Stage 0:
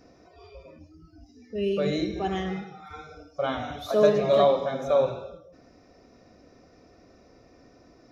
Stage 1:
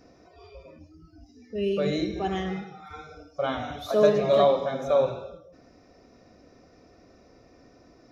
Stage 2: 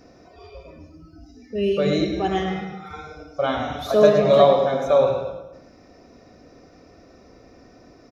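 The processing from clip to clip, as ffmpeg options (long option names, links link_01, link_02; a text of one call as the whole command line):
ffmpeg -i in.wav -af anull out.wav
ffmpeg -i in.wav -filter_complex "[0:a]asplit=2[link_01][link_02];[link_02]adelay=108,lowpass=frequency=4000:poles=1,volume=-7.5dB,asplit=2[link_03][link_04];[link_04]adelay=108,lowpass=frequency=4000:poles=1,volume=0.45,asplit=2[link_05][link_06];[link_06]adelay=108,lowpass=frequency=4000:poles=1,volume=0.45,asplit=2[link_07][link_08];[link_08]adelay=108,lowpass=frequency=4000:poles=1,volume=0.45,asplit=2[link_09][link_10];[link_10]adelay=108,lowpass=frequency=4000:poles=1,volume=0.45[link_11];[link_01][link_03][link_05][link_07][link_09][link_11]amix=inputs=6:normalize=0,volume=5dB" out.wav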